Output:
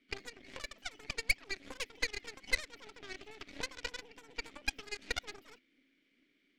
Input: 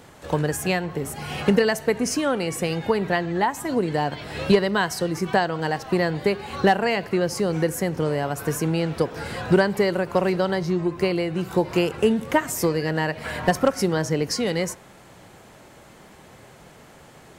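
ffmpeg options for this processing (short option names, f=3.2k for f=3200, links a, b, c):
-filter_complex "[0:a]asetrate=116424,aresample=44100,asplit=3[a][b][c];[a]bandpass=f=270:t=q:w=8,volume=0dB[d];[b]bandpass=f=2.29k:t=q:w=8,volume=-6dB[e];[c]bandpass=f=3.01k:t=q:w=8,volume=-9dB[f];[d][e][f]amix=inputs=3:normalize=0,aeval=exprs='0.1*(cos(1*acos(clip(val(0)/0.1,-1,1)))-cos(1*PI/2))+0.0316*(cos(4*acos(clip(val(0)/0.1,-1,1)))-cos(4*PI/2))+0.0112*(cos(7*acos(clip(val(0)/0.1,-1,1)))-cos(7*PI/2))':c=same,volume=1dB"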